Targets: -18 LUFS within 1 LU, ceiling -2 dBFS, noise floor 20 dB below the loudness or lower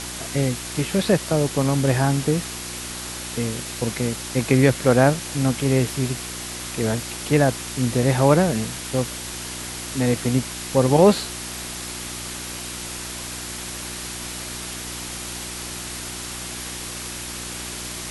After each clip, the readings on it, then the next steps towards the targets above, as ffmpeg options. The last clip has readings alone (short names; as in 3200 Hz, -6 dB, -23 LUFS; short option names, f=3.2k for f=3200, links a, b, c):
hum 60 Hz; harmonics up to 360 Hz; hum level -37 dBFS; noise floor -33 dBFS; noise floor target -44 dBFS; loudness -23.5 LUFS; peak -2.5 dBFS; loudness target -18.0 LUFS
-> -af "bandreject=f=60:t=h:w=4,bandreject=f=120:t=h:w=4,bandreject=f=180:t=h:w=4,bandreject=f=240:t=h:w=4,bandreject=f=300:t=h:w=4,bandreject=f=360:t=h:w=4"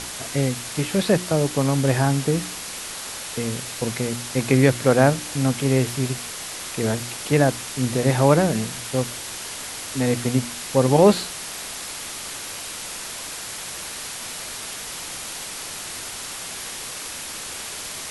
hum none; noise floor -34 dBFS; noise floor target -44 dBFS
-> -af "afftdn=nr=10:nf=-34"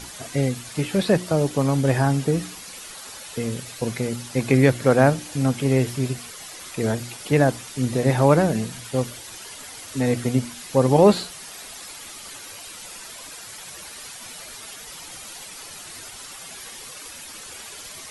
noise floor -40 dBFS; noise floor target -42 dBFS
-> -af "afftdn=nr=6:nf=-40"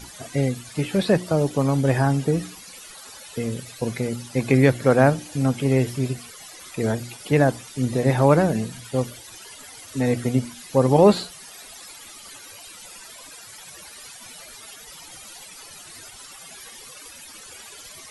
noise floor -43 dBFS; loudness -22.0 LUFS; peak -2.5 dBFS; loudness target -18.0 LUFS
-> -af "volume=4dB,alimiter=limit=-2dB:level=0:latency=1"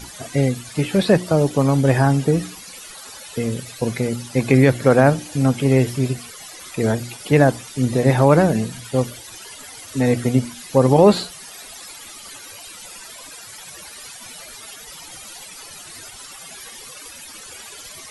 loudness -18.5 LUFS; peak -2.0 dBFS; noise floor -39 dBFS